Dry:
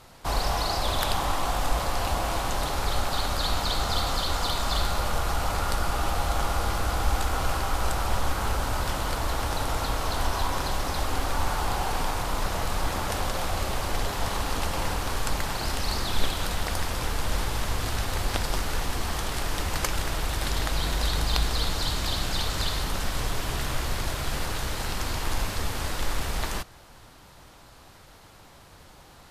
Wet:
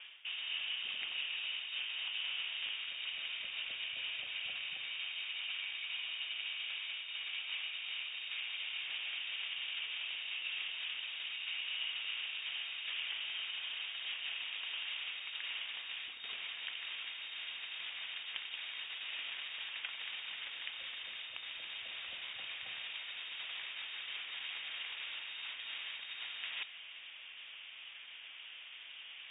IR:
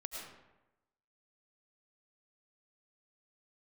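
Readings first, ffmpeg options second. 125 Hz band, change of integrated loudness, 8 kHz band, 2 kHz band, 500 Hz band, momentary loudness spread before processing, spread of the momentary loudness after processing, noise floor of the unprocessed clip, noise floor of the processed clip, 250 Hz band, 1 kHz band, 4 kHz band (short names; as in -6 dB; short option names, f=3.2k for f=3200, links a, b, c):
under -40 dB, -11.0 dB, under -40 dB, -6.5 dB, -33.0 dB, 4 LU, 5 LU, -51 dBFS, -51 dBFS, under -35 dB, -28.5 dB, -5.0 dB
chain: -filter_complex "[0:a]areverse,acompressor=threshold=-36dB:ratio=16,areverse,acrossover=split=300 2200:gain=0.126 1 0.0794[a][b][c];[a][b][c]amix=inputs=3:normalize=0,lowpass=f=3.1k:t=q:w=0.5098,lowpass=f=3.1k:t=q:w=0.6013,lowpass=f=3.1k:t=q:w=0.9,lowpass=f=3.1k:t=q:w=2.563,afreqshift=-3700,volume=4.5dB"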